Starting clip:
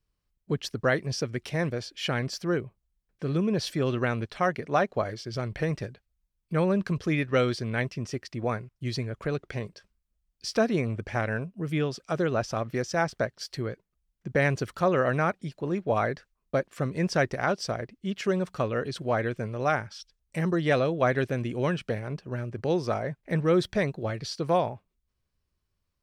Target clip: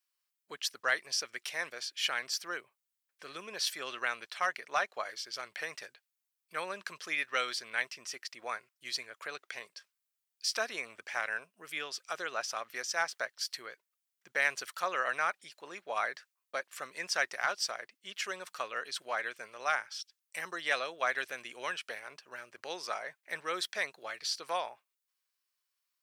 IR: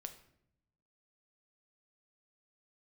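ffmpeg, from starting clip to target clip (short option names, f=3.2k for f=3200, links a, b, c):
-filter_complex "[0:a]highpass=1.2k,highshelf=f=7.7k:g=8,acrossover=split=1800[a][b];[a]volume=21.5dB,asoftclip=hard,volume=-21.5dB[c];[c][b]amix=inputs=2:normalize=0"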